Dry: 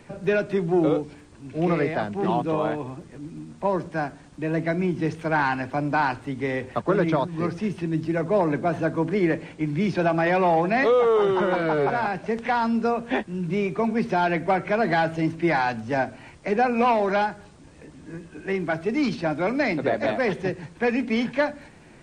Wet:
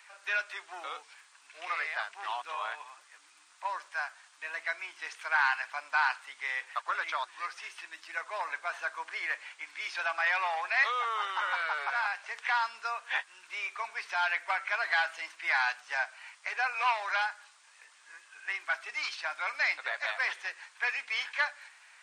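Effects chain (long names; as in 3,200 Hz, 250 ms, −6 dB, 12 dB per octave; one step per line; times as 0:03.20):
high-pass filter 1,100 Hz 24 dB per octave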